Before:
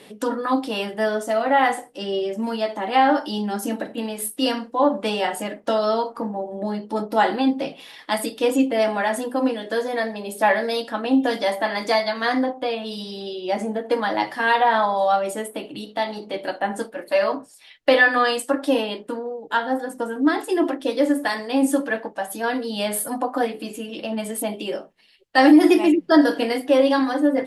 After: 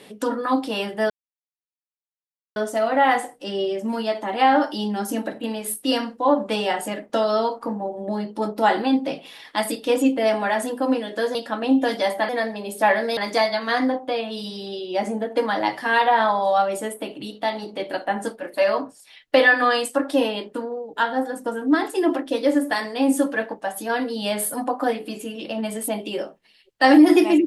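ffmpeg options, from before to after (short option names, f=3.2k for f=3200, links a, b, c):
-filter_complex "[0:a]asplit=5[a][b][c][d][e];[a]atrim=end=1.1,asetpts=PTS-STARTPTS,afade=t=out:st=1.096:d=0.004:c=hsin,apad=pad_dur=1.46[f];[b]atrim=start=1.1:end=9.892,asetpts=PTS-STARTPTS,afade=t=in:d=0.004:c=hsin[g];[c]atrim=start=10.768:end=11.712[h];[d]atrim=start=9.888:end=10.772[i];[e]atrim=start=11.708[j];[f][g]concat=n=2:v=0:a=1[k];[k][h]acrossfade=d=0.004:c1=hsin:c2=hsin[l];[l][i]acrossfade=d=0.004:c1=hsin:c2=hsin[m];[m][j]acrossfade=d=0.004:c1=hsin:c2=hsin"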